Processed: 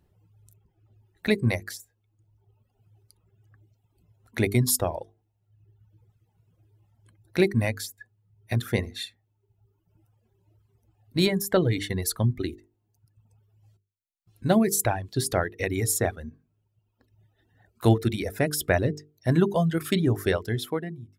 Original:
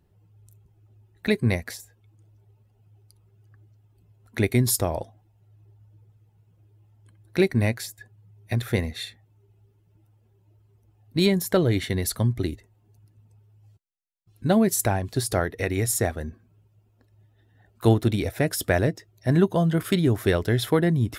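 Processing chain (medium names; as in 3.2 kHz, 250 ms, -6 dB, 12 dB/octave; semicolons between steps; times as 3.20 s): fade out at the end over 0.99 s; reverb removal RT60 1.1 s; hum notches 50/100/150/200/250/300/350/400/450 Hz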